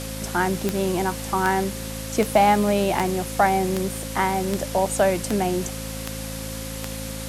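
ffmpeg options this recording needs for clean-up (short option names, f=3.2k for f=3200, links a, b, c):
-af "adeclick=t=4,bandreject=f=54.3:t=h:w=4,bandreject=f=108.6:t=h:w=4,bandreject=f=162.9:t=h:w=4,bandreject=f=217.2:t=h:w=4,bandreject=f=271.5:t=h:w=4,bandreject=f=530:w=30,afwtdn=0.018"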